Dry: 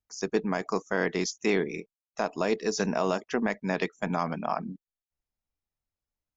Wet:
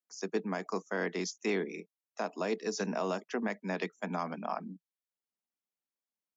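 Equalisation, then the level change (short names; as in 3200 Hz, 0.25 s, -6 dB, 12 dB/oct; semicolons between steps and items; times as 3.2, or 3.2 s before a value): steep high-pass 170 Hz 72 dB/oct; -6.0 dB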